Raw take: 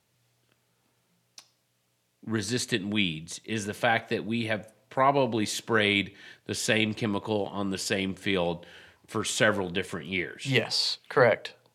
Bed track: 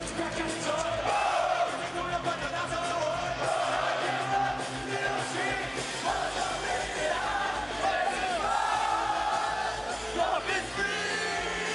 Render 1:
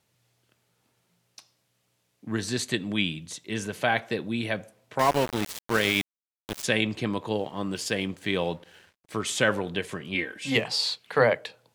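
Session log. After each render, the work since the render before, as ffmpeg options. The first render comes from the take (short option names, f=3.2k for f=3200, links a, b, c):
-filter_complex "[0:a]asettb=1/sr,asplit=3[a][b][c];[a]atrim=end=4.994[d];[b]atrim=start=4.99:end=6.64,asetpts=PTS-STARTPTS,afade=t=in:d=0.004:c=qsin,afade=t=out:st=1.646:d=0.004:c=qsin,aeval=exprs='val(0)*gte(abs(val(0)),0.0531)':c=same[e];[c]atrim=start=6.636[f];[d][e]acrossfade=d=0.004:c1=hsin:c2=qsin[g];[g][f]acrossfade=d=0.004:c1=qsin:c2=hsin,asettb=1/sr,asplit=3[h][i][j];[h]atrim=end=7.334[k];[i]atrim=start=7.33:end=9.14,asetpts=PTS-STARTPTS,afade=t=in:d=0.004:c=qsin,afade=t=out:st=1.806:d=0.004:c=qsin,aeval=exprs='sgn(val(0))*max(abs(val(0))-0.00168,0)':c=same[l];[j]atrim=start=9.136[m];[k][l]acrossfade=d=0.004:c1=hsin:c2=qsin[n];[n][m]acrossfade=d=0.004:c1=qsin:c2=hsin,asettb=1/sr,asplit=3[o][p][q];[o]atrim=end=10.144[r];[p]atrim=start=10.14:end=10.56,asetpts=PTS-STARTPTS,afade=t=in:d=0.004:c=qsin,afade=t=out:st=0.416:d=0.004:c=qsin,aecho=1:1:3.8:0.65,atrim=end_sample=18522[s];[q]atrim=start=10.556[t];[r][s]acrossfade=d=0.004:c1=hsin:c2=qsin[u];[u][t]acrossfade=d=0.004:c1=qsin:c2=hsin"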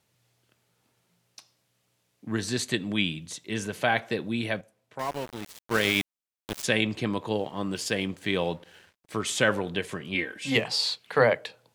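-filter_complex "[0:a]asplit=3[a][b][c];[a]atrim=end=4.61,asetpts=PTS-STARTPTS,afade=t=out:st=4.39:d=0.22:c=log:silence=0.334965[d];[b]atrim=start=4.61:end=5.71,asetpts=PTS-STARTPTS,volume=-9.5dB[e];[c]atrim=start=5.71,asetpts=PTS-STARTPTS,afade=t=in:d=0.22:c=log:silence=0.334965[f];[d][e][f]concat=n=3:v=0:a=1"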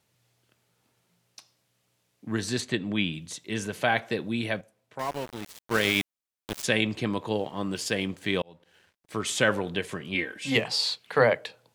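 -filter_complex "[0:a]asplit=3[a][b][c];[a]afade=t=out:st=2.6:d=0.02[d];[b]aemphasis=mode=reproduction:type=50fm,afade=t=in:st=2.6:d=0.02,afade=t=out:st=3.12:d=0.02[e];[c]afade=t=in:st=3.12:d=0.02[f];[d][e][f]amix=inputs=3:normalize=0,asplit=2[g][h];[g]atrim=end=8.42,asetpts=PTS-STARTPTS,afade=t=out:st=8.416:d=0.004:c=hsin[i];[h]atrim=start=8.42,asetpts=PTS-STARTPTS,afade=t=in:d=0.84[j];[i][j]concat=n=2:v=0:a=1"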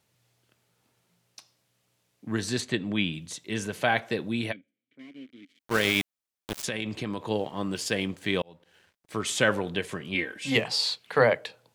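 -filter_complex "[0:a]asplit=3[a][b][c];[a]afade=t=out:st=4.51:d=0.02[d];[b]asplit=3[e][f][g];[e]bandpass=f=270:t=q:w=8,volume=0dB[h];[f]bandpass=f=2.29k:t=q:w=8,volume=-6dB[i];[g]bandpass=f=3.01k:t=q:w=8,volume=-9dB[j];[h][i][j]amix=inputs=3:normalize=0,afade=t=in:st=4.51:d=0.02,afade=t=out:st=5.59:d=0.02[k];[c]afade=t=in:st=5.59:d=0.02[l];[d][k][l]amix=inputs=3:normalize=0,asettb=1/sr,asplit=3[m][n][o];[m]atrim=end=6.624[p];[n]atrim=start=6.62:end=7.23,asetpts=PTS-STARTPTS,afade=t=in:d=0.004:c=qsin,afade=t=out:st=0.606:d=0.004:c=qsin,acompressor=threshold=-27dB:ratio=5:attack=3.2:release=140:knee=1:detection=peak[q];[o]atrim=start=7.226[r];[p][q]acrossfade=d=0.004:c1=hsin:c2=qsin[s];[s][r]acrossfade=d=0.004:c1=qsin:c2=hsin"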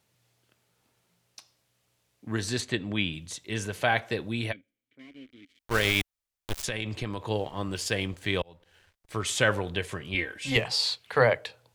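-af "asubboost=boost=8.5:cutoff=66"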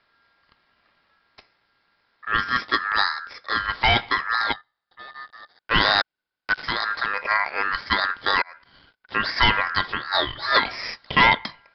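-af "aresample=8000,aeval=exprs='0.473*sin(PI/2*2.24*val(0)/0.473)':c=same,aresample=44100,aeval=exprs='val(0)*sin(2*PI*1500*n/s)':c=same"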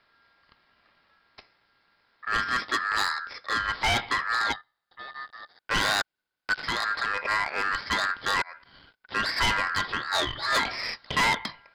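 -af "asoftclip=type=tanh:threshold=-19dB"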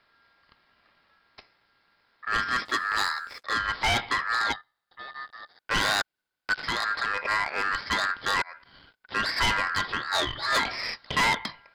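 -filter_complex "[0:a]asettb=1/sr,asplit=3[a][b][c];[a]atrim=end=2.654[d];[b]atrim=start=2.65:end=3.44,asetpts=PTS-STARTPTS,afade=t=in:d=0.004:c=qsin,afade=t=out:st=0.786:d=0.004:c=qsin,aeval=exprs='sgn(val(0))*max(abs(val(0))-0.00237,0)':c=same[e];[c]atrim=start=3.436[f];[d][e]acrossfade=d=0.004:c1=hsin:c2=qsin[g];[g][f]acrossfade=d=0.004:c1=qsin:c2=hsin"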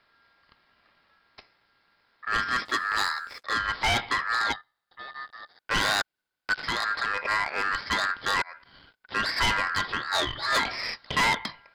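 -af anull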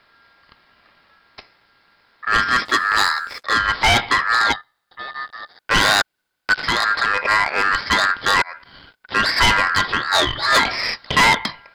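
-af "volume=9.5dB"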